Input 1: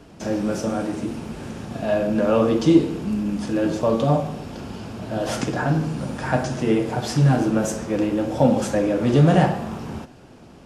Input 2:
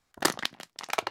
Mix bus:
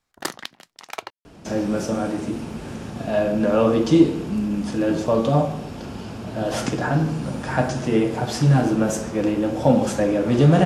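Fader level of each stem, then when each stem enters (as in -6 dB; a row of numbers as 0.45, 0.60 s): +0.5, -3.0 dB; 1.25, 0.00 s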